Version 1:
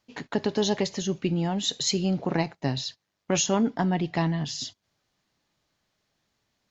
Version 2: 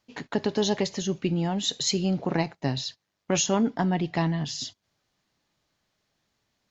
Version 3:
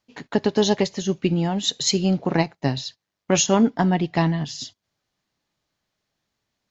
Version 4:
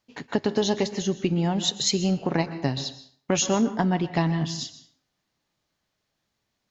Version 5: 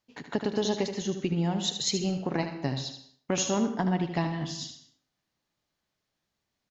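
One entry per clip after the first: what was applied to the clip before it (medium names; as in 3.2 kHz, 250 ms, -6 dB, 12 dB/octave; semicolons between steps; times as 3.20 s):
no audible change
upward expansion 1.5:1, over -40 dBFS; trim +7 dB
compression 2:1, threshold -22 dBFS, peak gain reduction 5.5 dB; plate-style reverb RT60 0.56 s, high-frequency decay 0.7×, pre-delay 110 ms, DRR 12 dB
delay 76 ms -8.5 dB; trim -5 dB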